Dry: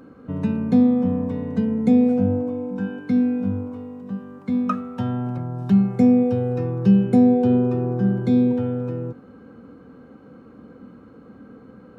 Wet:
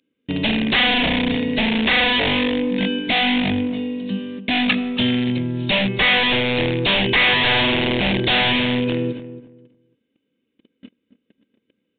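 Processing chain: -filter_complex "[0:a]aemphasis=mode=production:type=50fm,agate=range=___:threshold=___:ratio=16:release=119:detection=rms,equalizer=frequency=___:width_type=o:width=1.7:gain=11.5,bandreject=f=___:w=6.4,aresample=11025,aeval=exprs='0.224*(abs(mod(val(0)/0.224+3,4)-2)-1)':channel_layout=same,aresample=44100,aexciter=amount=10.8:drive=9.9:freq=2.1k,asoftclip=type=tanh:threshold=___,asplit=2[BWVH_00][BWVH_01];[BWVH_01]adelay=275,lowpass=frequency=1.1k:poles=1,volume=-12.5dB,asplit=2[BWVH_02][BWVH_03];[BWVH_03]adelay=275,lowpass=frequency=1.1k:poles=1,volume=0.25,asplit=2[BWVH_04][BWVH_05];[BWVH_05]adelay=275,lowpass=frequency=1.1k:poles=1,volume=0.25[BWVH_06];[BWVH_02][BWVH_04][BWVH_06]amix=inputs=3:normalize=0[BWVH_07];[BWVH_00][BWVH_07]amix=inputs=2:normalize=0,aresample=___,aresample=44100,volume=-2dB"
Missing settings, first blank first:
-35dB, -39dB, 330, 750, -8dB, 8000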